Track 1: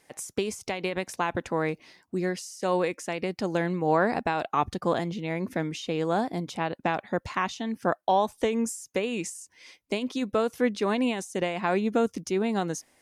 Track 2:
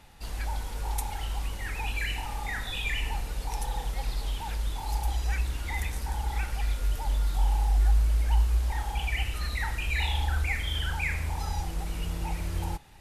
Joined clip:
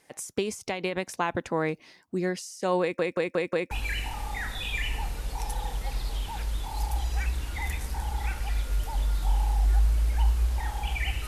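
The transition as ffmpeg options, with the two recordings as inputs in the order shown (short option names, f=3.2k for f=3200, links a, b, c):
-filter_complex "[0:a]apad=whole_dur=11.27,atrim=end=11.27,asplit=5[a][b][c][d][e];[a]atrim=end=2.992[f];[b]atrim=start=2.808:end=2.992[g];[c]atrim=start=2.808:end=2.992[h];[d]atrim=start=2.808:end=2.992[i];[e]atrim=start=2.808:end=2.992[j];[1:a]atrim=start=1.828:end=9.39[k];[f][g]acrossfade=d=0.004:c1=hsin:c2=hsin[l];[l][h]acrossfade=d=0.004:c1=hsin:c2=hsin[m];[m][i]acrossfade=d=0.004:c1=hsin:c2=hsin[n];[n][j]acrossfade=d=0.004:c1=hsin:c2=hsin[o];[o][k]acrossfade=d=0.004:c1=hsin:c2=hsin"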